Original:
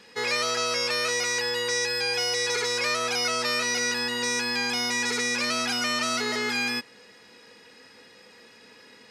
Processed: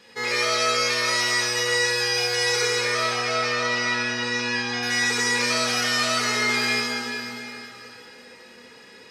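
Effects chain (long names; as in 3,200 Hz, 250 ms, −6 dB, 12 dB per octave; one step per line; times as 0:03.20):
0:02.76–0:04.83: high-frequency loss of the air 130 metres
dense smooth reverb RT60 3.5 s, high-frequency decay 0.9×, DRR −4.5 dB
level −1.5 dB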